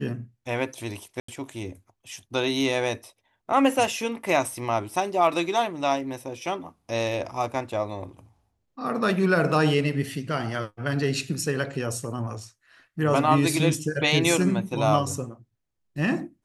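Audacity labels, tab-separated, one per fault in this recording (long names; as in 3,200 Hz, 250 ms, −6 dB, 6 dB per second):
1.200000	1.280000	drop-out 84 ms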